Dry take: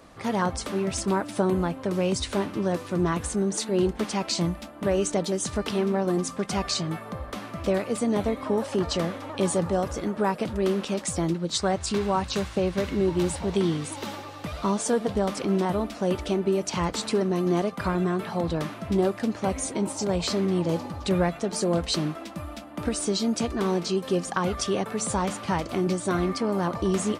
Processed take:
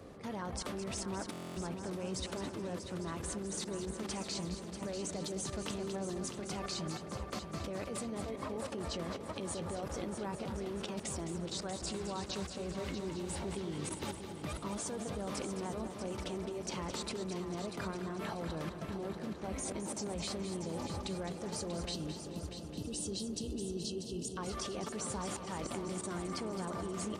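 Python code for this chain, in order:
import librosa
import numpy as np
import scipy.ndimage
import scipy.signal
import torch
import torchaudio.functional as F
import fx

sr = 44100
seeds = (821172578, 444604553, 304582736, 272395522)

y = fx.spec_erase(x, sr, start_s=21.94, length_s=2.43, low_hz=490.0, high_hz=2600.0)
y = fx.level_steps(y, sr, step_db=18)
y = fx.echo_heads(y, sr, ms=213, heads='first and third', feedback_pct=61, wet_db=-10.0)
y = fx.dmg_noise_band(y, sr, seeds[0], low_hz=53.0, high_hz=520.0, level_db=-49.0)
y = fx.buffer_glitch(y, sr, at_s=(1.31,), block=1024, repeats=10)
y = y * librosa.db_to_amplitude(-4.0)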